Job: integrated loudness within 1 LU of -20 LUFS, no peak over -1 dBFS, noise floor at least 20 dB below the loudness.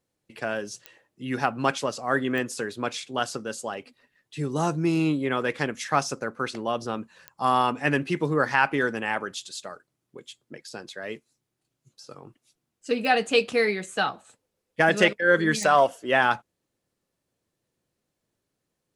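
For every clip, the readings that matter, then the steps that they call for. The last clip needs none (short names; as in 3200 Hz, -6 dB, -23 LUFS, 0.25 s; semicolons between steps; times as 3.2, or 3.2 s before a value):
clicks 5; loudness -25.0 LUFS; peak -4.5 dBFS; loudness target -20.0 LUFS
-> de-click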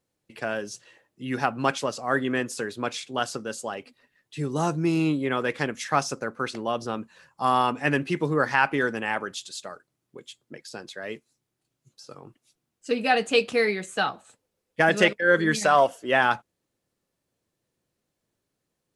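clicks 0; loudness -25.0 LUFS; peak -4.5 dBFS; loudness target -20.0 LUFS
-> gain +5 dB; limiter -1 dBFS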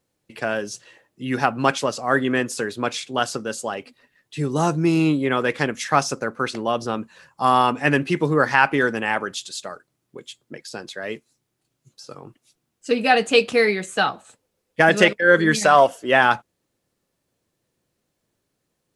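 loudness -20.0 LUFS; peak -1.0 dBFS; noise floor -76 dBFS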